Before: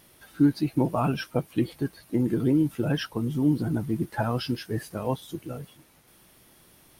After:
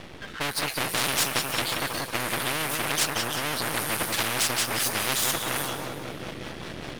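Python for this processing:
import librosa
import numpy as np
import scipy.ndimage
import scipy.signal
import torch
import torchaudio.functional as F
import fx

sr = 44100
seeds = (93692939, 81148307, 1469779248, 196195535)

p1 = fx.rotary_switch(x, sr, hz=0.7, then_hz=5.0, switch_at_s=4.99)
p2 = fx.rider(p1, sr, range_db=4, speed_s=0.5)
p3 = p1 + F.gain(torch.from_numpy(p2), 3.0).numpy()
p4 = fx.env_lowpass(p3, sr, base_hz=3000.0, full_db=-23.0)
p5 = np.maximum(p4, 0.0)
p6 = p5 + fx.echo_feedback(p5, sr, ms=181, feedback_pct=48, wet_db=-12, dry=0)
y = fx.spectral_comp(p6, sr, ratio=10.0)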